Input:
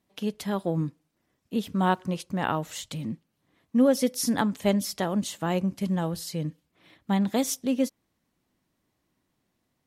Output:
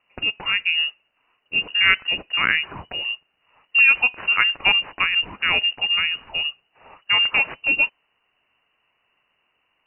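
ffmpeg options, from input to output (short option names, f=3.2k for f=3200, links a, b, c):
-af "crystalizer=i=8:c=0,acontrast=49,lowpass=f=2.6k:t=q:w=0.5098,lowpass=f=2.6k:t=q:w=0.6013,lowpass=f=2.6k:t=q:w=0.9,lowpass=f=2.6k:t=q:w=2.563,afreqshift=-3000,volume=-1dB"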